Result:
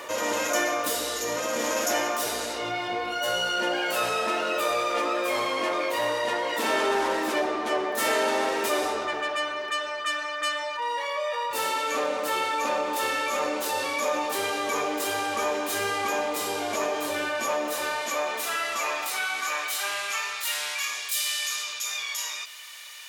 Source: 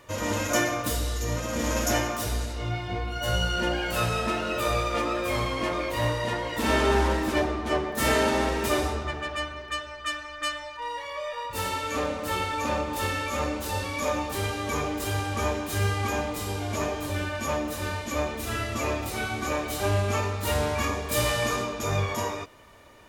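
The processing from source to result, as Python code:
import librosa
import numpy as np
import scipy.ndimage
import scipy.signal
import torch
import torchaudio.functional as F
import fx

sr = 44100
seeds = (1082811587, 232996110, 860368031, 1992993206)

y = fx.filter_sweep_highpass(x, sr, from_hz=430.0, to_hz=3100.0, start_s=17.36, end_s=21.24, q=0.89)
y = fx.env_flatten(y, sr, amount_pct=50)
y = y * 10.0 ** (-1.5 / 20.0)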